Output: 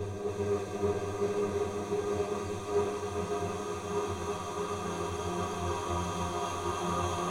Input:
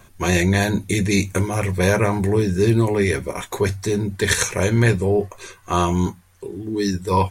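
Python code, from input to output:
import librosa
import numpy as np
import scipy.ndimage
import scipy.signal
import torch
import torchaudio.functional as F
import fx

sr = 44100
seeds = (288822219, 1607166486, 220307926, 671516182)

y = fx.paulstretch(x, sr, seeds[0], factor=44.0, window_s=1.0, from_s=5.38)
y = fx.echo_split(y, sr, split_hz=810.0, low_ms=676, high_ms=286, feedback_pct=52, wet_db=-3.0)
y = fx.band_widen(y, sr, depth_pct=100)
y = F.gain(torch.from_numpy(y), -7.5).numpy()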